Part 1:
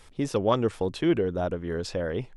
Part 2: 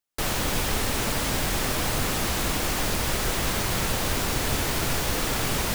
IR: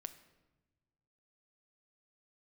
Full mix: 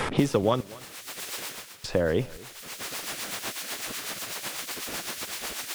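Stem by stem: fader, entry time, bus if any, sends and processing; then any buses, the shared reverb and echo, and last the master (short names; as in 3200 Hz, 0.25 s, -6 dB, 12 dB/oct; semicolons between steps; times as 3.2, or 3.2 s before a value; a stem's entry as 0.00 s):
0.0 dB, 0.00 s, muted 0.61–1.84, send -10 dB, echo send -20 dB, three-band squash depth 100%
-2.5 dB, 0.00 s, no send, no echo send, spectral gate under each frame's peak -15 dB weak; rotary speaker horn 8 Hz; auto duck -16 dB, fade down 0.40 s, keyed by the first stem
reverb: on, pre-delay 7 ms
echo: echo 0.242 s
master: dry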